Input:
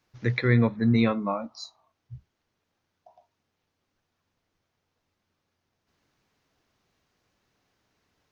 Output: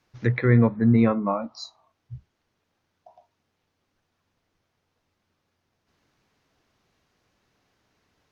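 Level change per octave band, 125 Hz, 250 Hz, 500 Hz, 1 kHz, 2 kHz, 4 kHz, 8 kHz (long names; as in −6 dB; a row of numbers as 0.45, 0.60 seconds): +3.5 dB, +3.5 dB, +3.5 dB, +3.0 dB, −1.0 dB, −3.0 dB, can't be measured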